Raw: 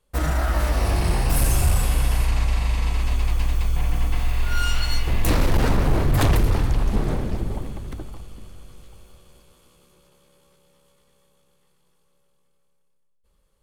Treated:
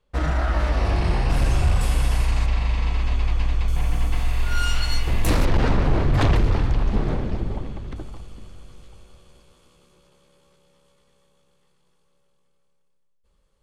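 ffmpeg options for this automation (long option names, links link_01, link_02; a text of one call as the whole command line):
ffmpeg -i in.wav -af "asetnsamples=nb_out_samples=441:pad=0,asendcmd='1.81 lowpass f 9000;2.46 lowpass f 4700;3.68 lowpass f 12000;5.45 lowpass f 4700;7.96 lowpass f 8100',lowpass=4400" out.wav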